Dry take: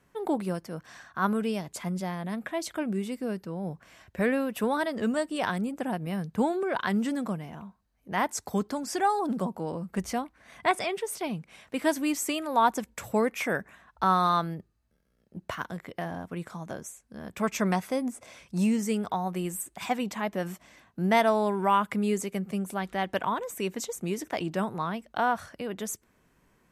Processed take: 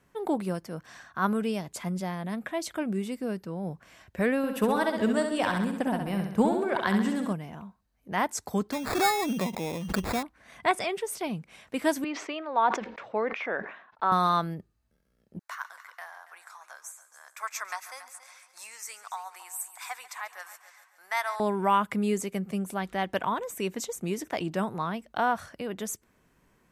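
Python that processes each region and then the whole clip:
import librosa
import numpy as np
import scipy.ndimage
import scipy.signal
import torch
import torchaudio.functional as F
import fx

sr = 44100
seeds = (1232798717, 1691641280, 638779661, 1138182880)

y = fx.chain(x, sr, fx.transient(attack_db=4, sustain_db=-2),
    fx.echo_feedback(ms=66, feedback_pct=54, wet_db=-6.0), at=(4.37, 7.33))
y = fx.chain(y, sr, fx.sample_hold(seeds[0], rate_hz=3000.0, jitter_pct=0),
    fx.pre_swell(db_per_s=68.0), at=(8.72, 10.23))
y = fx.chain(y, sr, fx.bandpass_edges(low_hz=410.0, high_hz=5400.0),
    fx.air_absorb(metres=270.0),
    fx.sustainer(db_per_s=91.0), at=(12.04, 14.12))
y = fx.chain(y, sr, fx.highpass(hz=1000.0, slope=24),
    fx.peak_eq(hz=3000.0, db=-10.5, octaves=0.5),
    fx.echo_heads(ms=140, heads='first and second', feedback_pct=41, wet_db=-16.5), at=(15.39, 21.4))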